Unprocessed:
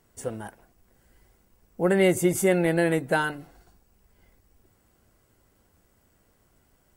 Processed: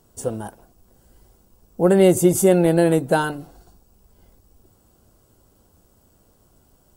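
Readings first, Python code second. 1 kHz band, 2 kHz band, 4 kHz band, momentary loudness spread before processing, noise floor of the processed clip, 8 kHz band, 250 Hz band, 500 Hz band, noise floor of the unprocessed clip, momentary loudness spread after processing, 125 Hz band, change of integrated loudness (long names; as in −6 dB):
+5.5 dB, −1.5 dB, +3.0 dB, 18 LU, −59 dBFS, +6.5 dB, +7.0 dB, +6.5 dB, −66 dBFS, 15 LU, +7.0 dB, +6.0 dB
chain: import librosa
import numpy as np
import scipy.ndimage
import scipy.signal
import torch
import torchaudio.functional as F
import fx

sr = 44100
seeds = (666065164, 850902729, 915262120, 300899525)

y = fx.peak_eq(x, sr, hz=2000.0, db=-13.0, octaves=0.82)
y = y * librosa.db_to_amplitude(7.0)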